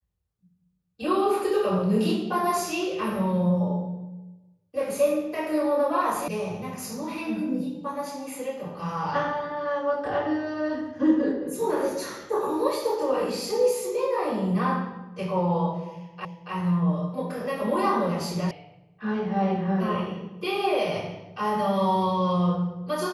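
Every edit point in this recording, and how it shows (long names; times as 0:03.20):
0:06.28: cut off before it has died away
0:16.25: the same again, the last 0.28 s
0:18.51: cut off before it has died away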